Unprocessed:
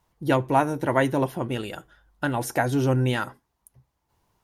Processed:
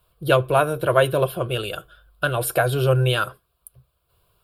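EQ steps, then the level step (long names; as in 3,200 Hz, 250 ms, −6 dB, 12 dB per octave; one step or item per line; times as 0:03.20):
high-shelf EQ 3,700 Hz +6 dB
phaser with its sweep stopped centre 1,300 Hz, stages 8
+7.0 dB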